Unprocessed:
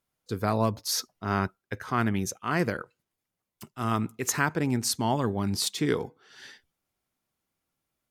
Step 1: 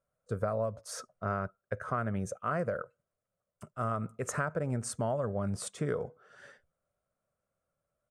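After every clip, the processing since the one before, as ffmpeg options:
ffmpeg -i in.wav -af "firequalizer=gain_entry='entry(160,0);entry(310,-11);entry(570,11);entry(850,-8);entry(1300,3);entry(1900,-9);entry(4100,-20);entry(8700,-5);entry(13000,-26)':delay=0.05:min_phase=1,acompressor=threshold=-28dB:ratio=10" out.wav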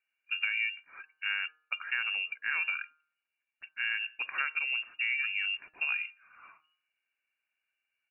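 ffmpeg -i in.wav -af "lowpass=frequency=2500:width_type=q:width=0.5098,lowpass=frequency=2500:width_type=q:width=0.6013,lowpass=frequency=2500:width_type=q:width=0.9,lowpass=frequency=2500:width_type=q:width=2.563,afreqshift=-2900,bandreject=frequency=155.6:width_type=h:width=4,bandreject=frequency=311.2:width_type=h:width=4,bandreject=frequency=466.8:width_type=h:width=4,bandreject=frequency=622.4:width_type=h:width=4,bandreject=frequency=778:width_type=h:width=4,bandreject=frequency=933.6:width_type=h:width=4,bandreject=frequency=1089.2:width_type=h:width=4,bandreject=frequency=1244.8:width_type=h:width=4,bandreject=frequency=1400.4:width_type=h:width=4,bandreject=frequency=1556:width_type=h:width=4,bandreject=frequency=1711.6:width_type=h:width=4" out.wav

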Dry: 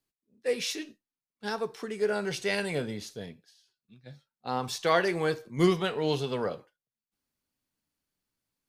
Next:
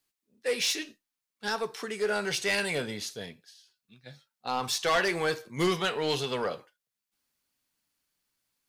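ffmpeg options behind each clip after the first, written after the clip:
ffmpeg -i in.wav -af "tiltshelf=frequency=670:gain=-5,asoftclip=type=tanh:threshold=-21.5dB,volume=2dB" out.wav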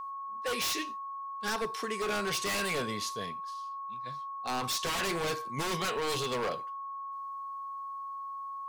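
ffmpeg -i in.wav -af "aeval=exprs='0.0447*(abs(mod(val(0)/0.0447+3,4)-2)-1)':channel_layout=same,aeval=exprs='val(0)+0.0141*sin(2*PI*1100*n/s)':channel_layout=same" out.wav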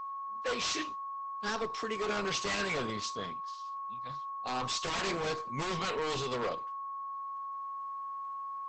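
ffmpeg -i in.wav -af "equalizer=frequency=11000:width_type=o:width=0.42:gain=-15" -ar 48000 -c:a libopus -b:a 12k out.opus

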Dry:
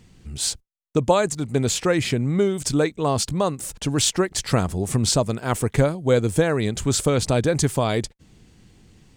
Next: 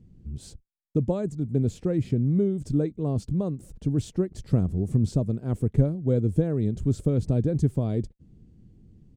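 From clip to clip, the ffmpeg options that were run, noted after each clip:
ffmpeg -i in.wav -af "firequalizer=gain_entry='entry(190,0);entry(910,-21);entry(1900,-24)':delay=0.05:min_phase=1" out.wav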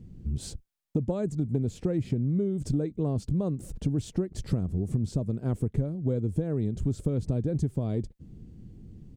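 ffmpeg -i in.wav -af "acompressor=threshold=-31dB:ratio=5,volume=6dB" out.wav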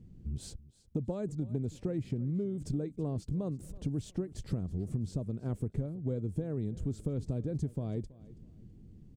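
ffmpeg -i in.wav -af "aecho=1:1:327|654:0.1|0.027,volume=-6.5dB" out.wav

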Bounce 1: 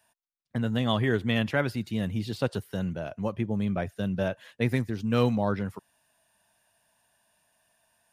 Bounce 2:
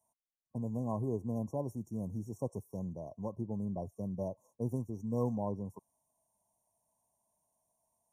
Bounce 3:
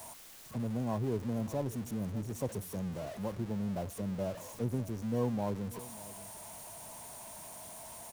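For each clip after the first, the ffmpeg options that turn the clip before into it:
ffmpeg -i in.wav -af "afftfilt=real='re*(1-between(b*sr/4096,1100,5500))':imag='im*(1-between(b*sr/4096,1100,5500))':win_size=4096:overlap=0.75,volume=-9dB" out.wav
ffmpeg -i in.wav -af "aeval=exprs='val(0)+0.5*0.00841*sgn(val(0))':channel_layout=same,aecho=1:1:591:0.126" out.wav

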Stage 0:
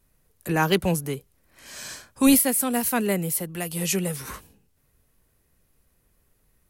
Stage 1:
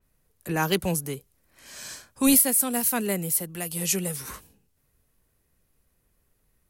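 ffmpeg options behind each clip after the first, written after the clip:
ffmpeg -i in.wav -af "adynamicequalizer=threshold=0.01:dfrequency=4100:dqfactor=0.7:tfrequency=4100:tqfactor=0.7:attack=5:release=100:ratio=0.375:range=3:mode=boostabove:tftype=highshelf,volume=-3.5dB" out.wav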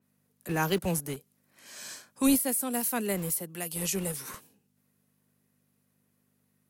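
ffmpeg -i in.wav -filter_complex "[0:a]aeval=exprs='val(0)+0.001*(sin(2*PI*50*n/s)+sin(2*PI*2*50*n/s)/2+sin(2*PI*3*50*n/s)/3+sin(2*PI*4*50*n/s)/4+sin(2*PI*5*50*n/s)/5)':channel_layout=same,acrossover=split=130|1100[link_01][link_02][link_03];[link_01]acrusher=bits=6:mix=0:aa=0.000001[link_04];[link_03]alimiter=limit=-16dB:level=0:latency=1:release=147[link_05];[link_04][link_02][link_05]amix=inputs=3:normalize=0,volume=-3dB" out.wav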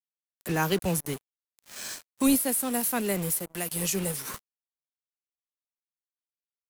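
ffmpeg -i in.wav -filter_complex "[0:a]asplit=2[link_01][link_02];[link_02]acompressor=threshold=-37dB:ratio=5,volume=-2dB[link_03];[link_01][link_03]amix=inputs=2:normalize=0,acrusher=bits=5:mix=0:aa=0.5" out.wav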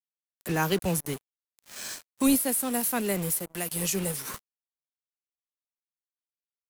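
ffmpeg -i in.wav -af anull out.wav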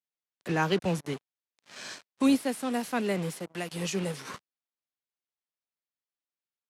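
ffmpeg -i in.wav -af "highpass=120,lowpass=4700" out.wav

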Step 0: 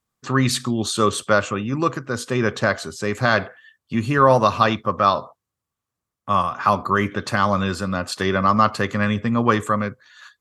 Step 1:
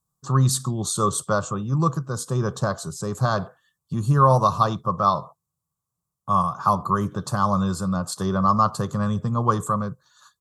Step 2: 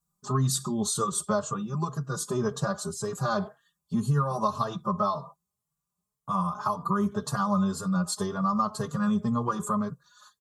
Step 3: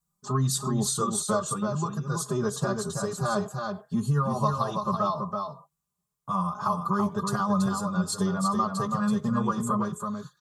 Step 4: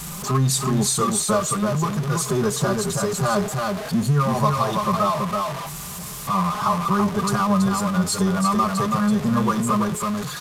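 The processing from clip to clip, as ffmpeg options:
ffmpeg -i in.wav -af "firequalizer=gain_entry='entry(110,0);entry(160,10);entry(230,-9);entry(340,-6);entry(620,-5);entry(1100,0);entry(2100,-28);entry(3600,-8);entry(7600,3)':delay=0.05:min_phase=1" out.wav
ffmpeg -i in.wav -filter_complex "[0:a]aecho=1:1:4.9:0.72,acompressor=threshold=-20dB:ratio=6,asplit=2[link_01][link_02];[link_02]adelay=3.8,afreqshift=1.9[link_03];[link_01][link_03]amix=inputs=2:normalize=1" out.wav
ffmpeg -i in.wav -af "aecho=1:1:330:0.562" out.wav
ffmpeg -i in.wav -af "aeval=exprs='val(0)+0.5*0.0335*sgn(val(0))':channel_layout=same,aresample=32000,aresample=44100,volume=4dB" out.wav

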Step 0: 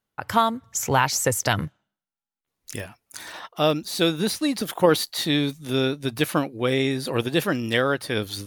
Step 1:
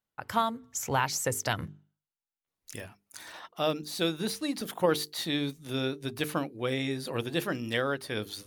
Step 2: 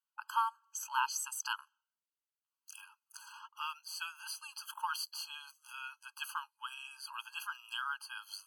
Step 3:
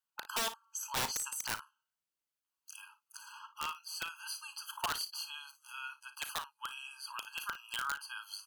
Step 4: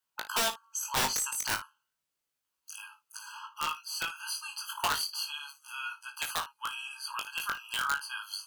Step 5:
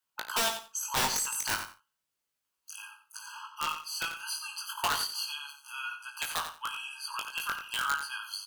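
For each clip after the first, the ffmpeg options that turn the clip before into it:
ffmpeg -i in.wav -af "bandreject=frequency=50:width_type=h:width=6,bandreject=frequency=100:width_type=h:width=6,bandreject=frequency=150:width_type=h:width=6,bandreject=frequency=200:width_type=h:width=6,bandreject=frequency=250:width_type=h:width=6,bandreject=frequency=300:width_type=h:width=6,bandreject=frequency=350:width_type=h:width=6,bandreject=frequency=400:width_type=h:width=6,bandreject=frequency=450:width_type=h:width=6,volume=-7.5dB" out.wav
ffmpeg -i in.wav -af "afftfilt=real='re*eq(mod(floor(b*sr/1024/830),2),1)':imag='im*eq(mod(floor(b*sr/1024/830),2),1)':win_size=1024:overlap=0.75,volume=-3dB" out.wav
ffmpeg -i in.wav -af "aeval=exprs='(mod(26.6*val(0)+1,2)-1)/26.6':channel_layout=same,aecho=1:1:36|56:0.2|0.188,volume=1dB" out.wav
ffmpeg -i in.wav -af "flanger=delay=18.5:depth=2.8:speed=0.32,volume=9dB" out.wav
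ffmpeg -i in.wav -af "aecho=1:1:90|180:0.335|0.0569" out.wav

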